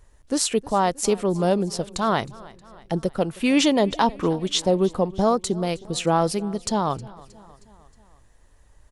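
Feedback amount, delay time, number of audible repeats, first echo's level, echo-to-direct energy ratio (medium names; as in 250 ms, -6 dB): 57%, 314 ms, 3, -21.5 dB, -20.0 dB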